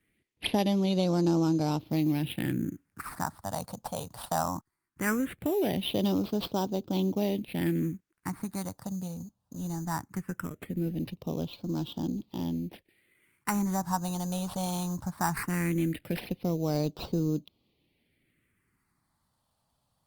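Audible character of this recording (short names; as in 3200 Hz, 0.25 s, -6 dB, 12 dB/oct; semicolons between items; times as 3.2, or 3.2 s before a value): aliases and images of a low sample rate 6600 Hz, jitter 0%; phasing stages 4, 0.19 Hz, lowest notch 350–1900 Hz; Opus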